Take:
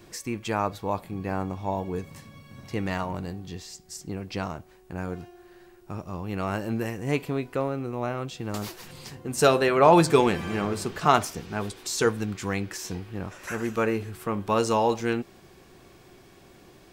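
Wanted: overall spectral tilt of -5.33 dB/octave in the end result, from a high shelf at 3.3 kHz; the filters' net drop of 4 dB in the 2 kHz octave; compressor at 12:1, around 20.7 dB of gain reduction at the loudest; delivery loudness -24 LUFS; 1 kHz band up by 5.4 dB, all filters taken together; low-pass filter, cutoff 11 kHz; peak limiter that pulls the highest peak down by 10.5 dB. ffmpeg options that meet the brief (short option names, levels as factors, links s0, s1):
-af "lowpass=11000,equalizer=f=1000:t=o:g=9,equalizer=f=2000:t=o:g=-8,highshelf=f=3300:g=-5.5,acompressor=threshold=0.0355:ratio=12,volume=6.31,alimiter=limit=0.211:level=0:latency=1"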